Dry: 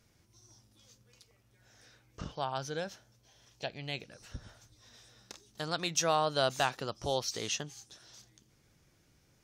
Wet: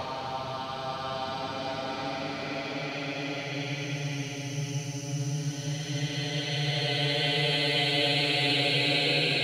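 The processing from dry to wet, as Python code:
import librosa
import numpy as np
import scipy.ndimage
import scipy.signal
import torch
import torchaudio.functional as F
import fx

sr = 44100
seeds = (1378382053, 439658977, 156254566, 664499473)

p1 = fx.reverse_delay_fb(x, sr, ms=590, feedback_pct=45, wet_db=-2)
p2 = fx.dynamic_eq(p1, sr, hz=4100.0, q=1.4, threshold_db=-46.0, ratio=4.0, max_db=4)
p3 = np.clip(p2, -10.0 ** (-26.0 / 20.0), 10.0 ** (-26.0 / 20.0))
p4 = p2 + (p3 * 10.0 ** (-4.5 / 20.0))
p5 = fx.paulstretch(p4, sr, seeds[0], factor=39.0, window_s=0.1, from_s=3.71)
y = p5 * 10.0 ** (5.0 / 20.0)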